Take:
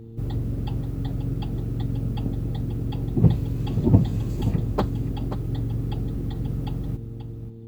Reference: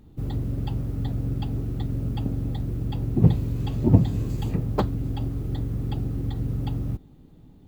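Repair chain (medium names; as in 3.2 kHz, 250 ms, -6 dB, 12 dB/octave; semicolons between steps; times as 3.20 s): de-hum 113.7 Hz, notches 4; inverse comb 532 ms -11 dB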